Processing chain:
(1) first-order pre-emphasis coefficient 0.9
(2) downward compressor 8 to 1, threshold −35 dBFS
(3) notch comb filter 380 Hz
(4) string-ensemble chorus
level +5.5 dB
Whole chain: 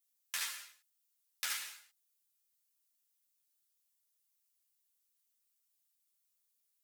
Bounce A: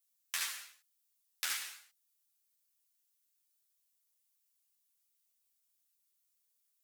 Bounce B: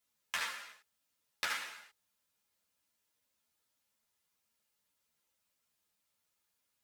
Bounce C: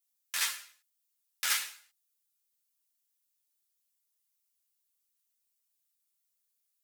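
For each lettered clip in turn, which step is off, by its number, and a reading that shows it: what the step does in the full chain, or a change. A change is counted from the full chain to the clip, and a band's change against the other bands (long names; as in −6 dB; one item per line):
3, change in integrated loudness +1.5 LU
1, 8 kHz band −12.0 dB
2, average gain reduction 4.0 dB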